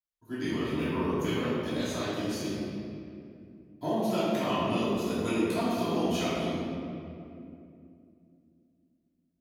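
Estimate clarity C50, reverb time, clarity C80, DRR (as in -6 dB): -3.5 dB, 2.6 s, -1.5 dB, -12.5 dB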